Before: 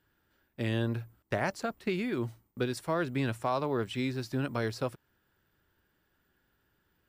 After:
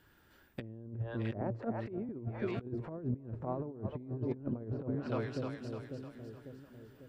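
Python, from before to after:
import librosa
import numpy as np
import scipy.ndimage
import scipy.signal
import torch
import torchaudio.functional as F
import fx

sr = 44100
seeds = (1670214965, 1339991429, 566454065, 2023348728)

y = fx.highpass(x, sr, hz=220.0, slope=24, at=(1.41, 2.09))
y = fx.echo_split(y, sr, split_hz=500.0, low_ms=547, high_ms=303, feedback_pct=52, wet_db=-12.0)
y = fx.env_lowpass_down(y, sr, base_hz=440.0, full_db=-30.5)
y = fx.over_compress(y, sr, threshold_db=-39.0, ratio=-0.5)
y = y * 10.0 ** (2.5 / 20.0)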